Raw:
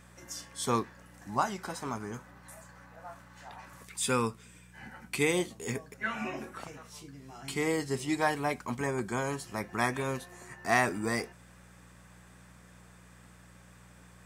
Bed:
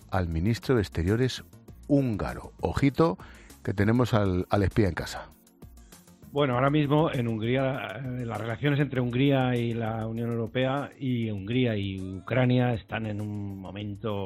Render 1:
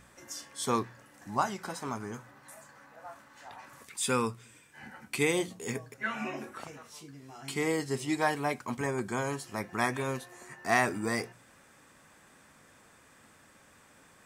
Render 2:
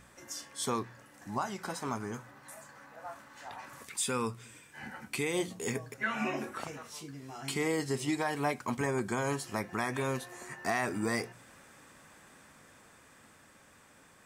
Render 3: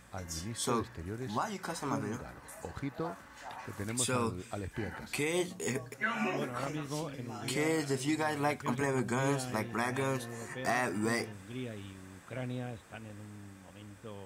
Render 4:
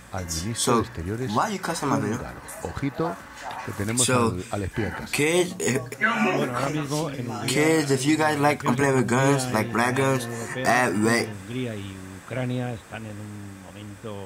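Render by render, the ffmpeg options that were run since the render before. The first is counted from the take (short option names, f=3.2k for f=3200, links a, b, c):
-af "bandreject=f=60:t=h:w=4,bandreject=f=120:t=h:w=4,bandreject=f=180:t=h:w=4"
-af "dynaudnorm=f=640:g=9:m=3.5dB,alimiter=limit=-21.5dB:level=0:latency=1:release=194"
-filter_complex "[1:a]volume=-15.5dB[a];[0:a][a]amix=inputs=2:normalize=0"
-af "volume=11dB"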